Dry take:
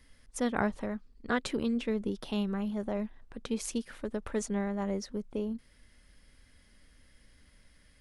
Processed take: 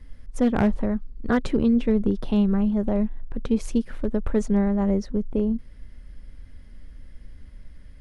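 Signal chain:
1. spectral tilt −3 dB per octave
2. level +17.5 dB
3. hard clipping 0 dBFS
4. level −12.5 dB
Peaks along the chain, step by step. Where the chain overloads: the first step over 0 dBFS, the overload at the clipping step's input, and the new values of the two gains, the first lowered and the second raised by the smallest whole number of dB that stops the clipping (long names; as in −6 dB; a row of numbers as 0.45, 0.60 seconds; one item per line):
−11.5, +6.0, 0.0, −12.5 dBFS
step 2, 6.0 dB
step 2 +11.5 dB, step 4 −6.5 dB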